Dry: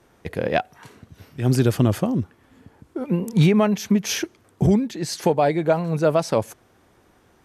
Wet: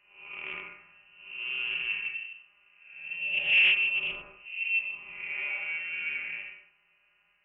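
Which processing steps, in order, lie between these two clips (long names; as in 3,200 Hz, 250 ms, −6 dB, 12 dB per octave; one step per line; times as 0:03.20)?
spectrum smeared in time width 277 ms
tuned comb filter 210 Hz, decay 0.15 s, harmonics all, mix 90%
voice inversion scrambler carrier 2,900 Hz
highs frequency-modulated by the lows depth 0.13 ms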